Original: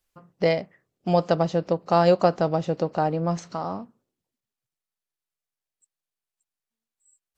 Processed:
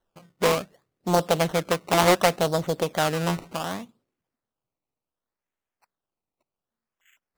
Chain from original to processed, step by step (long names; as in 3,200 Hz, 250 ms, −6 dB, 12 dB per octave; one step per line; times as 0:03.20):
sample-and-hold swept by an LFO 18×, swing 100% 0.67 Hz
highs frequency-modulated by the lows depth 0.44 ms